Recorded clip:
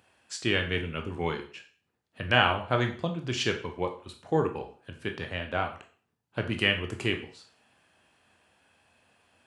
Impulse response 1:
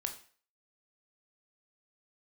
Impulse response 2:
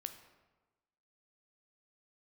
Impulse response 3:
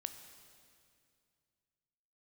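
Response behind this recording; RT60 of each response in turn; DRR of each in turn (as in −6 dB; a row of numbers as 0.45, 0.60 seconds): 1; 0.45, 1.2, 2.3 seconds; 4.5, 7.5, 8.0 decibels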